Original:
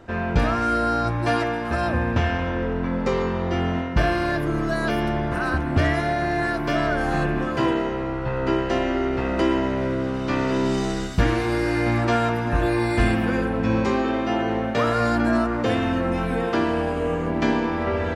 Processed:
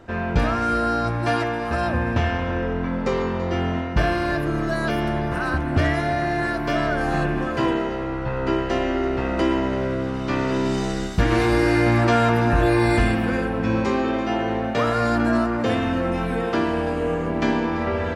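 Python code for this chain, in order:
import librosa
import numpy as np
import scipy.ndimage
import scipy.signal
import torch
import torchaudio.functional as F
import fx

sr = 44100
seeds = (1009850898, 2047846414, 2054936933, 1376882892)

p1 = x + fx.echo_single(x, sr, ms=335, db=-15.5, dry=0)
y = fx.env_flatten(p1, sr, amount_pct=50, at=(11.3, 12.98), fade=0.02)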